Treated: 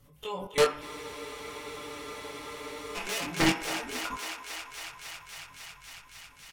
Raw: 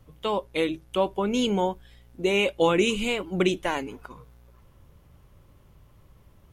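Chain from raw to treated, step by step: sawtooth pitch modulation -3 st, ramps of 1296 ms; treble shelf 3.5 kHz +10 dB; comb 6.9 ms, depth 60%; de-hum 97.84 Hz, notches 26; level held to a coarse grid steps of 22 dB; reverb removal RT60 1.4 s; sine folder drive 7 dB, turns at -16 dBFS; chorus 0.96 Hz, delay 19.5 ms, depth 3.1 ms; thinning echo 275 ms, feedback 85%, high-pass 410 Hz, level -10.5 dB; on a send at -3 dB: reverberation RT60 0.65 s, pre-delay 3 ms; on the sum: spectral freeze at 0.83 s, 2.13 s

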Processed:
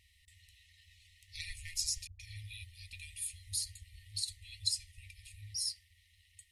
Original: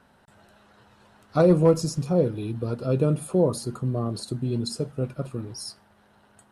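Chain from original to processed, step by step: FFT band-reject 100–1800 Hz; 2.07–2.93 s: phase dispersion highs, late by 125 ms, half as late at 410 Hz; trim +1 dB

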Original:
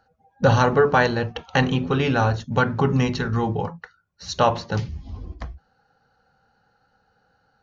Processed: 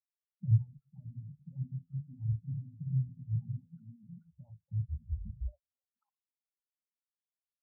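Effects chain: repeats whose band climbs or falls 536 ms, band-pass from 200 Hz, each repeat 1.4 oct, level -2 dB; LFO low-pass sine 8.3 Hz 340–3700 Hz; overload inside the chain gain 16.5 dB; bass shelf 300 Hz +8.5 dB; compression 12:1, threshold -25 dBFS, peak gain reduction 14.5 dB; static phaser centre 960 Hz, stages 4; touch-sensitive flanger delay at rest 11.4 ms, full sweep at -27 dBFS; hum notches 50/100 Hz; spectral contrast expander 4:1; trim +3.5 dB

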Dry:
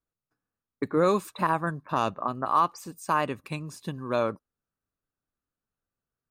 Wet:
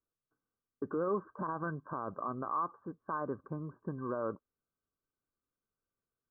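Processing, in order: peak limiter -23.5 dBFS, peak gain reduction 11 dB; rippled Chebyshev low-pass 1.6 kHz, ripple 6 dB

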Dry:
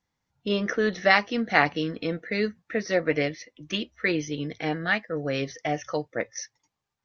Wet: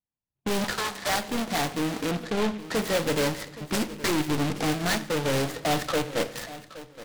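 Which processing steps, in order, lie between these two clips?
square wave that keeps the level; 2.11–2.62 s: inverse Chebyshev low-pass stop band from 3.1 kHz, stop band 40 dB; gate -40 dBFS, range -22 dB; 0.64–1.09 s: high-pass 740 Hz 24 dB/octave; level-controlled noise filter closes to 1.2 kHz, open at -17.5 dBFS; in parallel at +1 dB: compression, threshold -26 dBFS, peak gain reduction 14.5 dB; 4.19–5.34 s: on the sum: transient shaper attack +3 dB, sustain -8 dB; level rider; saturation -16 dBFS, distortion -9 dB; on a send: feedback delay 821 ms, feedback 18%, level -16 dB; on the sum: simulated room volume 330 m³, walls mixed, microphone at 0.32 m; delay time shaken by noise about 2.2 kHz, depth 0.084 ms; trim -6.5 dB

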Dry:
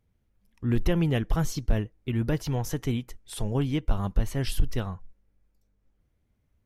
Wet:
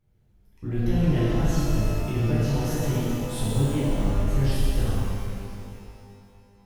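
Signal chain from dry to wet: bass shelf 320 Hz +5.5 dB; compression 3:1, threshold -26 dBFS, peak gain reduction 11.5 dB; pitch-shifted reverb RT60 2.3 s, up +12 st, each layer -8 dB, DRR -10 dB; trim -5 dB

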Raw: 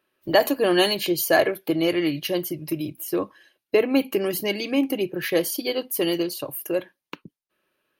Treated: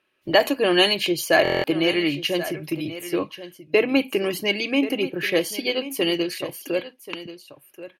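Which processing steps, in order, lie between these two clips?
low-pass 10 kHz 12 dB/octave; peaking EQ 2.5 kHz +7 dB 0.8 oct; delay 1083 ms -14 dB; buffer glitch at 1.43 s, samples 1024, times 8

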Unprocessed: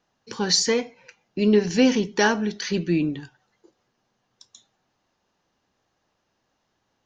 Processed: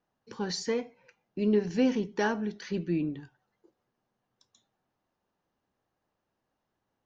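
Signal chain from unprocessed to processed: treble shelf 2.5 kHz -11 dB; trim -7 dB

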